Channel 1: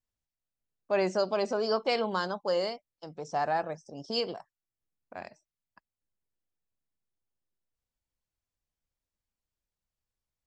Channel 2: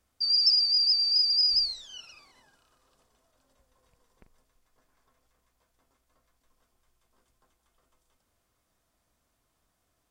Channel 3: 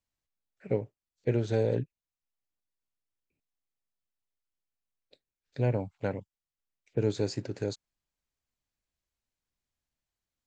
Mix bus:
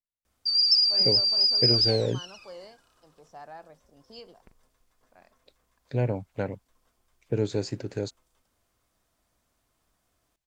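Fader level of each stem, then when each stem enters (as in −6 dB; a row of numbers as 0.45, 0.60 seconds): −15.5, +1.5, +1.5 decibels; 0.00, 0.25, 0.35 seconds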